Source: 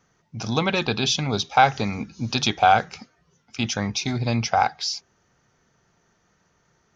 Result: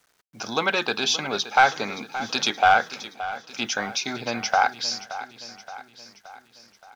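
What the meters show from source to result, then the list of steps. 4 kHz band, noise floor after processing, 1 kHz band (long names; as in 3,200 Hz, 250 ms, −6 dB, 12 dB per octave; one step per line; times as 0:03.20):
0.0 dB, −64 dBFS, −1.0 dB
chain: high-pass filter 340 Hz 12 dB per octave
parametric band 1,500 Hz +7.5 dB 0.36 octaves
bit reduction 10 bits
soft clipping −7 dBFS, distortion −17 dB
repeating echo 573 ms, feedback 54%, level −14 dB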